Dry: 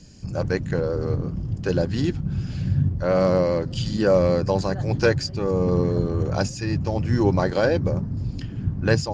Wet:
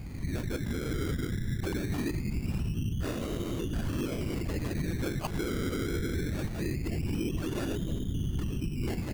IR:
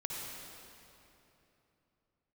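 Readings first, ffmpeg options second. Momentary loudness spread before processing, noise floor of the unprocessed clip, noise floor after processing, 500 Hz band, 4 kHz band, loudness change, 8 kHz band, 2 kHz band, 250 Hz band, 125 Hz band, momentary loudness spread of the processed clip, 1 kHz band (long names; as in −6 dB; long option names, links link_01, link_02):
8 LU, −33 dBFS, −36 dBFS, −16.0 dB, −8.0 dB, −10.0 dB, can't be measured, −10.0 dB, −7.5 dB, −9.5 dB, 2 LU, −13.5 dB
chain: -filter_complex "[0:a]acompressor=threshold=-27dB:ratio=10,aecho=1:1:2.9:0.81,asplit=2[link_01][link_02];[1:a]atrim=start_sample=2205,asetrate=70560,aresample=44100[link_03];[link_02][link_03]afir=irnorm=-1:irlink=0,volume=-8.5dB[link_04];[link_01][link_04]amix=inputs=2:normalize=0,aeval=exprs='val(0)+0.00891*(sin(2*PI*60*n/s)+sin(2*PI*2*60*n/s)/2+sin(2*PI*3*60*n/s)/3+sin(2*PI*4*60*n/s)/4+sin(2*PI*5*60*n/s)/5)':channel_layout=same,equalizer=frequency=810:width_type=o:width=0.36:gain=-5.5,bandreject=frequency=5300:width=6.4,aecho=1:1:679:0.0668,afftfilt=real='hypot(re,im)*cos(2*PI*random(0))':imag='hypot(re,im)*sin(2*PI*random(1))':win_size=512:overlap=0.75,firequalizer=gain_entry='entry(290,0);entry(670,-15);entry(3000,5);entry(6400,-13)':delay=0.05:min_phase=1,acrusher=samples=19:mix=1:aa=0.000001:lfo=1:lforange=11.4:lforate=0.22,alimiter=level_in=9dB:limit=-24dB:level=0:latency=1:release=48,volume=-9dB,volume=8.5dB"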